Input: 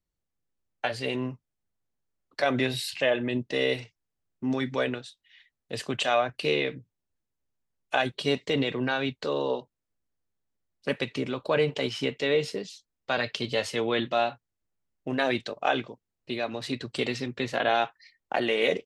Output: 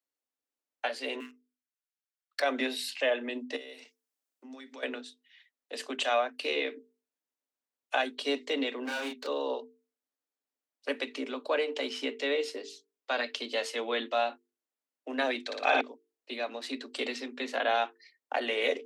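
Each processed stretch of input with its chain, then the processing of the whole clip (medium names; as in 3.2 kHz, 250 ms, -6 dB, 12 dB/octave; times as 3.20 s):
1.20–2.40 s: steep high-pass 1.3 kHz 48 dB/octave + waveshaping leveller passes 2
3.56–4.83 s: treble shelf 4.3 kHz +9.5 dB + compression 5:1, threshold -40 dBFS
8.85–9.27 s: hard clipper -30 dBFS + doubling 32 ms -2.5 dB
15.41–15.81 s: peaking EQ 2.5 kHz +8.5 dB 0.63 oct + band-stop 2.9 kHz, Q 6.4 + flutter echo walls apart 9.8 m, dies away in 1.5 s
whole clip: steep high-pass 240 Hz 96 dB/octave; peaking EQ 350 Hz -7 dB 0.26 oct; hum notches 50/100/150/200/250/300/350/400/450 Hz; trim -3 dB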